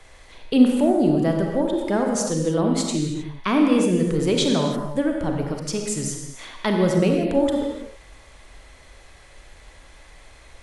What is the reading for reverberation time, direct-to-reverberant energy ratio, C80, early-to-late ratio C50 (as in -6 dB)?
no single decay rate, 1.5 dB, 3.5 dB, 2.5 dB